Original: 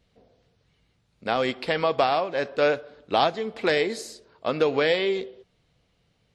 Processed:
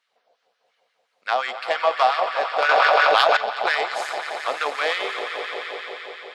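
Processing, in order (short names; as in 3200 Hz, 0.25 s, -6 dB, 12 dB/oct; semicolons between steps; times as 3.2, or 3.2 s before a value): swelling echo 87 ms, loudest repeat 5, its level -11 dB; added harmonics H 7 -27 dB, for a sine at -4 dBFS; LFO high-pass sine 5.7 Hz 680–1500 Hz; 2.69–3.37 fast leveller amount 100%; gain +1 dB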